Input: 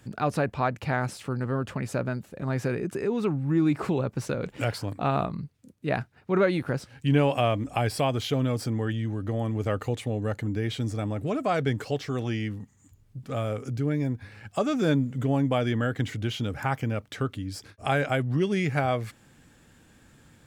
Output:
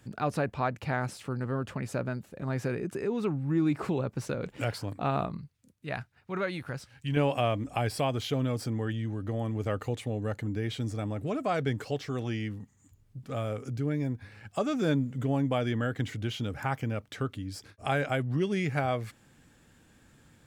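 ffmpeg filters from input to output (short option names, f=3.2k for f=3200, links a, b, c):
-filter_complex "[0:a]asettb=1/sr,asplit=3[a][b][c];[a]atrim=end=5.384[d];[b]atrim=start=5.38:end=7.17,asetpts=PTS-STARTPTS,afade=t=in:d=0.004:c=qsin,afade=t=out:st=1.786:d=0.004:c=qsin,equalizer=f=330:t=o:w=2.5:g=-8.5[e];[c]atrim=start=7.166[f];[d][e]acrossfade=d=0.004:c1=hsin:c2=qsin[g];[g][f]acrossfade=d=0.004:c1=qsin:c2=hsin,volume=-3.5dB"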